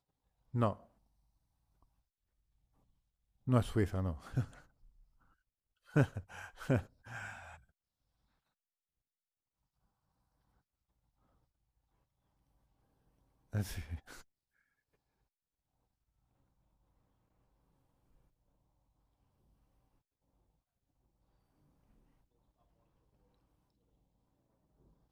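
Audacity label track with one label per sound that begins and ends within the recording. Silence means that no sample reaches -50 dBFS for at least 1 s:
3.470000	4.600000	sound
5.930000	7.570000	sound
13.530000	14.210000	sound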